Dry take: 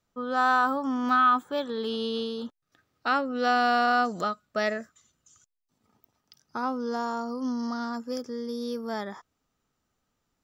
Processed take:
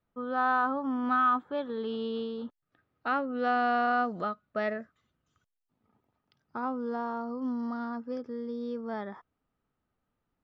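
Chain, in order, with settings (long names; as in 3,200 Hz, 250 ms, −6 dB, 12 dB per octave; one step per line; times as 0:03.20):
high-frequency loss of the air 380 metres
level −2 dB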